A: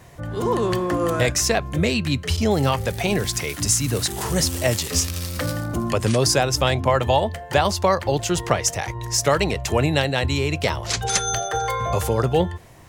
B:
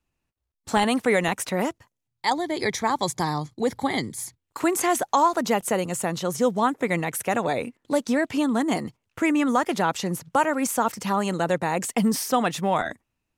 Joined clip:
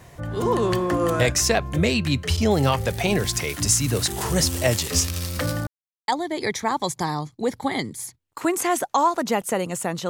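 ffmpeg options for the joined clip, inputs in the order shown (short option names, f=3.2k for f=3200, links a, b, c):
-filter_complex "[0:a]apad=whole_dur=10.09,atrim=end=10.09,asplit=2[a][b];[a]atrim=end=5.67,asetpts=PTS-STARTPTS,afade=t=out:st=5.666:d=0.004:c=hsin[c];[b]atrim=start=5.67:end=6.08,asetpts=PTS-STARTPTS,volume=0[d];[1:a]atrim=start=2.27:end=6.28,asetpts=PTS-STARTPTS,afade=t=in:d=0.004:c=hsin[e];[c][d][e]concat=n=3:v=0:a=1"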